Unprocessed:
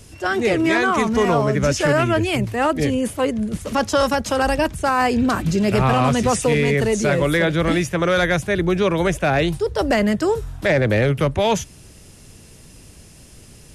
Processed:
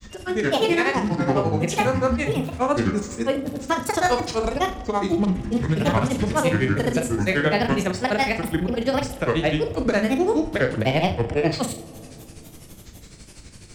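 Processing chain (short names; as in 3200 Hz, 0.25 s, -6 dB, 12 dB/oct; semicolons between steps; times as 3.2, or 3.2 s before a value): upward compressor, threshold -33 dBFS; grains, grains 12/s, pitch spread up and down by 7 st; flutter echo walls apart 6.6 m, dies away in 0.3 s; on a send at -15 dB: reverb RT60 2.6 s, pre-delay 4 ms; on the sum: gain -1 dB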